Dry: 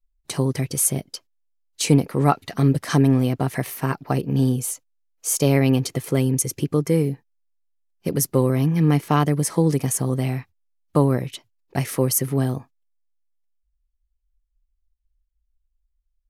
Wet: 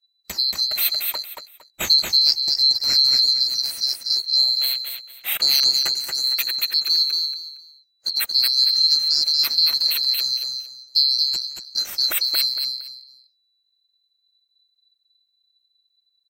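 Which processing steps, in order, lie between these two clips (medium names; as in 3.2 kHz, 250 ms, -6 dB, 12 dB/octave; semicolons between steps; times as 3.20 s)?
split-band scrambler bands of 4 kHz; 5.71–6.24 s: graphic EQ 500/2000/4000/8000 Hz -4/+4/-9/+7 dB; feedback delay 230 ms, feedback 25%, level -4 dB; trim -1 dB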